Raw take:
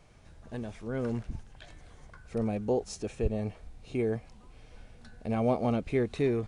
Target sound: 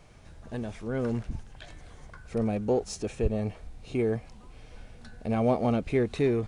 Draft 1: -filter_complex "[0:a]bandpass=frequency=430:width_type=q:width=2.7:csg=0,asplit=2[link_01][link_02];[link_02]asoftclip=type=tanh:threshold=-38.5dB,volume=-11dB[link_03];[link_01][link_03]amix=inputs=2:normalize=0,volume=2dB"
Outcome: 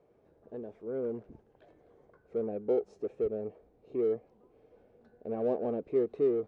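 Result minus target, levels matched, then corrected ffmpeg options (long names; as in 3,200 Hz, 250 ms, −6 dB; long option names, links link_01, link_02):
500 Hz band +2.5 dB
-filter_complex "[0:a]asplit=2[link_01][link_02];[link_02]asoftclip=type=tanh:threshold=-38.5dB,volume=-11dB[link_03];[link_01][link_03]amix=inputs=2:normalize=0,volume=2dB"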